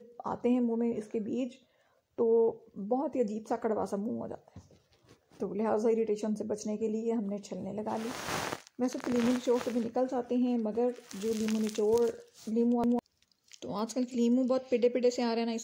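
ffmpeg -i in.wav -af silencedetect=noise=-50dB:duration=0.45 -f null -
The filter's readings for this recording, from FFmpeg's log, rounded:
silence_start: 1.56
silence_end: 2.18 | silence_duration: 0.63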